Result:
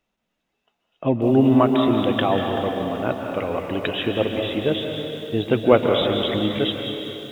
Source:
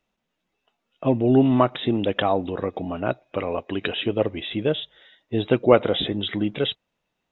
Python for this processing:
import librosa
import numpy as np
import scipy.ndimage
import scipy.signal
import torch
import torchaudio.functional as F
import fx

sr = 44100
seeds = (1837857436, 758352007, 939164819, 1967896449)

y = fx.rev_plate(x, sr, seeds[0], rt60_s=3.1, hf_ratio=1.0, predelay_ms=120, drr_db=3.0)
y = fx.echo_crushed(y, sr, ms=191, feedback_pct=55, bits=7, wet_db=-13)